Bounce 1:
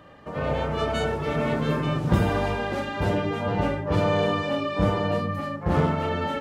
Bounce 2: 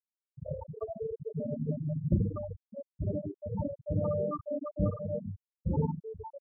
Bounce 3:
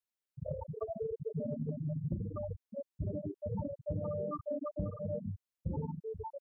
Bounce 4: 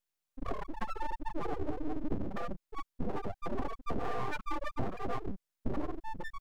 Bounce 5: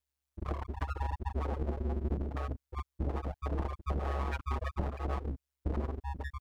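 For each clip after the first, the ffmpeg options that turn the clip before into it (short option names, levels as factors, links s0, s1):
-af "afftfilt=real='re*gte(hypot(re,im),0.316)':imag='im*gte(hypot(re,im),0.316)':win_size=1024:overlap=0.75,volume=0.531"
-af "acompressor=threshold=0.02:ratio=10,volume=1.12"
-af "aeval=exprs='abs(val(0))':c=same,volume=1.78"
-af "aeval=exprs='val(0)*sin(2*PI*70*n/s)':c=same,volume=1.19"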